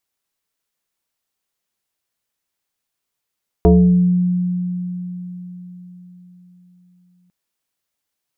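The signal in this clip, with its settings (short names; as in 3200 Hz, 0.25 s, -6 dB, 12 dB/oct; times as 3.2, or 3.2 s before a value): FM tone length 3.65 s, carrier 179 Hz, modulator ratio 1.42, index 1.7, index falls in 0.77 s exponential, decay 4.49 s, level -6 dB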